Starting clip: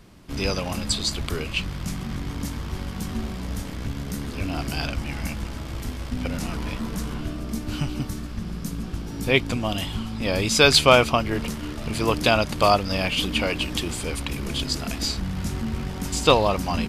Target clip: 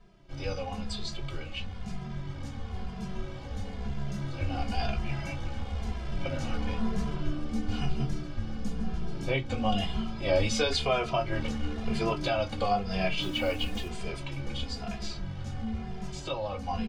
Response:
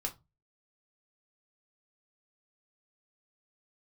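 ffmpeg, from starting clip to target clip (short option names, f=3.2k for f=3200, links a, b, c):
-filter_complex "[0:a]lowpass=5.2k,equalizer=f=760:w=2.6:g=4.5,alimiter=limit=-12.5dB:level=0:latency=1:release=235,dynaudnorm=f=590:g=13:m=6dB,asettb=1/sr,asplit=3[a][b][c];[a]atrim=end=13.224[d];[b]atrim=start=13.22:end=13.88,asetpts=PTS-STARTPTS,afade=t=in:d=0.004:c=qsin,afade=t=out:st=0.656:d=0.004:c=qsin,acrusher=bits=5:mix=0:aa=0.5[e];[c]atrim=start=13.876[f];[d][e]acrossfade=d=0.004:c1=hsin:c2=qsin[g];[g][f]acrossfade=d=0.004:c1=qsin:c2=hsin[h];[1:a]atrim=start_sample=2205,asetrate=57330,aresample=44100[i];[h][i]afir=irnorm=-1:irlink=0,asplit=2[j][k];[k]adelay=2.5,afreqshift=-1[l];[j][l]amix=inputs=2:normalize=1,volume=-6dB"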